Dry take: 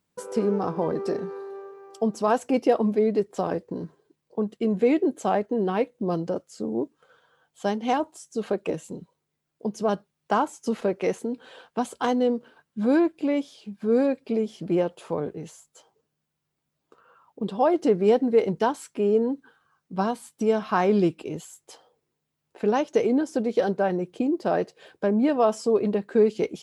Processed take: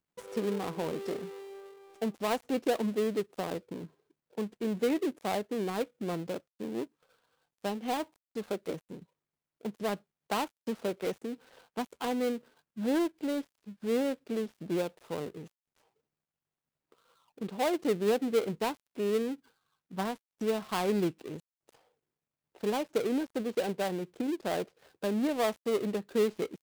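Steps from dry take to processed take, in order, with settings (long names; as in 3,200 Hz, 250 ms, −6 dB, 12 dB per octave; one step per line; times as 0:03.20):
gap after every zero crossing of 0.21 ms
level −8 dB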